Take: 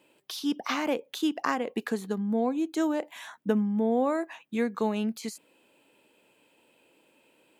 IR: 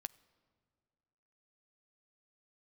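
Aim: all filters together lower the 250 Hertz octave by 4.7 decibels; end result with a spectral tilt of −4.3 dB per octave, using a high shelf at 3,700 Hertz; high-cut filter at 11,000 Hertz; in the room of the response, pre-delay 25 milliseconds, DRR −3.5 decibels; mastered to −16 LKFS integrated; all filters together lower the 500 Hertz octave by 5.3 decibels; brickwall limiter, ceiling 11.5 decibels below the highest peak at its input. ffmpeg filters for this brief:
-filter_complex "[0:a]lowpass=11000,equalizer=frequency=250:width_type=o:gain=-4.5,equalizer=frequency=500:width_type=o:gain=-5,highshelf=frequency=3700:gain=-5.5,alimiter=limit=-24dB:level=0:latency=1,asplit=2[link_01][link_02];[1:a]atrim=start_sample=2205,adelay=25[link_03];[link_02][link_03]afir=irnorm=-1:irlink=0,volume=7.5dB[link_04];[link_01][link_04]amix=inputs=2:normalize=0,volume=13.5dB"

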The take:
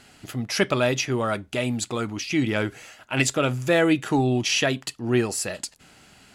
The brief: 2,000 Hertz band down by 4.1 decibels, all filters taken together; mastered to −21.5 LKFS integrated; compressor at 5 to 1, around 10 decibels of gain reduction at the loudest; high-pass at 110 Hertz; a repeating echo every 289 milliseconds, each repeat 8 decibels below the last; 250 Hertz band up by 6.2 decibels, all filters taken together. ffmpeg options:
ffmpeg -i in.wav -af "highpass=110,equalizer=frequency=250:width_type=o:gain=8,equalizer=frequency=2000:width_type=o:gain=-5.5,acompressor=threshold=-23dB:ratio=5,aecho=1:1:289|578|867|1156|1445:0.398|0.159|0.0637|0.0255|0.0102,volume=6dB" out.wav

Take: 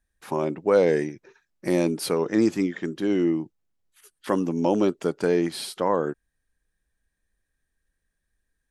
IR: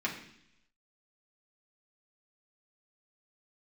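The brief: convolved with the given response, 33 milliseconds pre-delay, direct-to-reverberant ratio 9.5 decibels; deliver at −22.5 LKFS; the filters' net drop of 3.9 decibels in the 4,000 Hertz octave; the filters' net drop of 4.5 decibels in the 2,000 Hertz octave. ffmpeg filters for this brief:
-filter_complex "[0:a]equalizer=frequency=2000:width_type=o:gain=-5,equalizer=frequency=4000:width_type=o:gain=-3.5,asplit=2[link_01][link_02];[1:a]atrim=start_sample=2205,adelay=33[link_03];[link_02][link_03]afir=irnorm=-1:irlink=0,volume=-16dB[link_04];[link_01][link_04]amix=inputs=2:normalize=0,volume=2dB"

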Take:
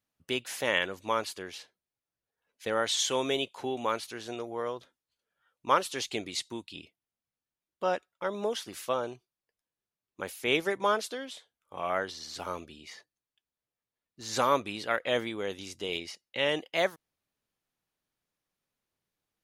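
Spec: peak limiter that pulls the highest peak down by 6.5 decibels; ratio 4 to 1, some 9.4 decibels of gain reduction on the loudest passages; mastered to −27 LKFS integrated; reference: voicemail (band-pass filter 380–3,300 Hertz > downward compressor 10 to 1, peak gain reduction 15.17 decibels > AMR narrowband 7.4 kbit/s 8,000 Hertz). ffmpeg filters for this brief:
ffmpeg -i in.wav -af "acompressor=threshold=-30dB:ratio=4,alimiter=limit=-23dB:level=0:latency=1,highpass=380,lowpass=3300,acompressor=threshold=-45dB:ratio=10,volume=25dB" -ar 8000 -c:a libopencore_amrnb -b:a 7400 out.amr

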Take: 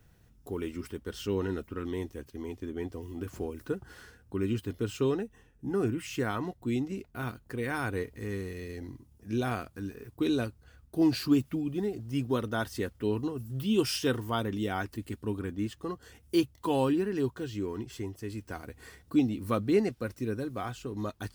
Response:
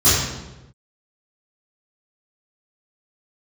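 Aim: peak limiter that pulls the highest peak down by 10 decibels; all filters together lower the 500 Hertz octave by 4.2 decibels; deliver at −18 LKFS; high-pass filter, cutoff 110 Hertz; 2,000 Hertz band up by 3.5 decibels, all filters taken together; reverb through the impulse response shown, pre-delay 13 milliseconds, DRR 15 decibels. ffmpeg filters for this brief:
-filter_complex "[0:a]highpass=110,equalizer=frequency=500:width_type=o:gain=-6,equalizer=frequency=2000:width_type=o:gain=5.5,alimiter=level_in=1.5dB:limit=-24dB:level=0:latency=1,volume=-1.5dB,asplit=2[link_01][link_02];[1:a]atrim=start_sample=2205,adelay=13[link_03];[link_02][link_03]afir=irnorm=-1:irlink=0,volume=-36.5dB[link_04];[link_01][link_04]amix=inputs=2:normalize=0,volume=19dB"

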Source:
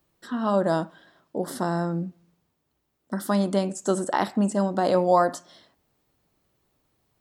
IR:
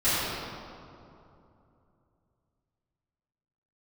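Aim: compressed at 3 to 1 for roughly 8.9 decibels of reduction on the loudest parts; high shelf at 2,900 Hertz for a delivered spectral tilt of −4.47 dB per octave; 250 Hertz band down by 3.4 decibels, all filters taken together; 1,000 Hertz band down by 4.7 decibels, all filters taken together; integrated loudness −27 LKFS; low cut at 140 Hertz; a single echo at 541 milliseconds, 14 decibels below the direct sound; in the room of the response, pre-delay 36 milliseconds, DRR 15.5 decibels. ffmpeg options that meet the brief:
-filter_complex "[0:a]highpass=140,equalizer=frequency=250:width_type=o:gain=-3.5,equalizer=frequency=1000:width_type=o:gain=-7,highshelf=frequency=2900:gain=5.5,acompressor=threshold=-30dB:ratio=3,aecho=1:1:541:0.2,asplit=2[link_01][link_02];[1:a]atrim=start_sample=2205,adelay=36[link_03];[link_02][link_03]afir=irnorm=-1:irlink=0,volume=-31dB[link_04];[link_01][link_04]amix=inputs=2:normalize=0,volume=7dB"

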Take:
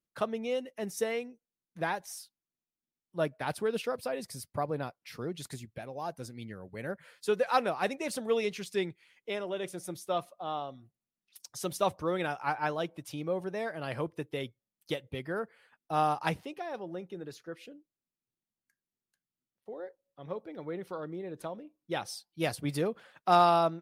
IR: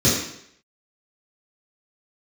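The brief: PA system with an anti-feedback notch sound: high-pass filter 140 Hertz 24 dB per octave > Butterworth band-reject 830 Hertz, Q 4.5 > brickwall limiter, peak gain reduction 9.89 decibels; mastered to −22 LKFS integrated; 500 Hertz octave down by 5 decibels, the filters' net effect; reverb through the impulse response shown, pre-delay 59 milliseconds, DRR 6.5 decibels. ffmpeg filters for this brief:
-filter_complex "[0:a]equalizer=frequency=500:width_type=o:gain=-6.5,asplit=2[link_01][link_02];[1:a]atrim=start_sample=2205,adelay=59[link_03];[link_02][link_03]afir=irnorm=-1:irlink=0,volume=-25dB[link_04];[link_01][link_04]amix=inputs=2:normalize=0,highpass=frequency=140:width=0.5412,highpass=frequency=140:width=1.3066,asuperstop=centerf=830:order=8:qfactor=4.5,volume=14.5dB,alimiter=limit=-8.5dB:level=0:latency=1"

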